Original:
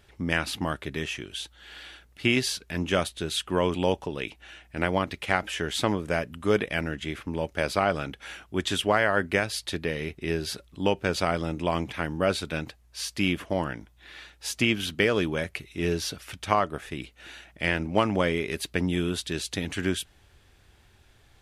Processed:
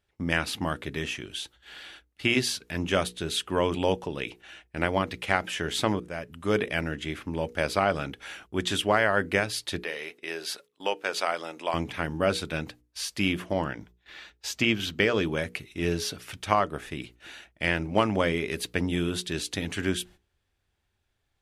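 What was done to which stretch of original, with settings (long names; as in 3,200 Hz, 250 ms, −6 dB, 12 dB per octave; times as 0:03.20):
0:06.00–0:06.57: fade in, from −16.5 dB
0:09.79–0:11.74: high-pass filter 560 Hz
0:13.52–0:15.26: parametric band 10,000 Hz −14.5 dB 0.24 octaves
whole clip: noise gate −48 dBFS, range −18 dB; mains-hum notches 60/120/180/240/300/360/420/480 Hz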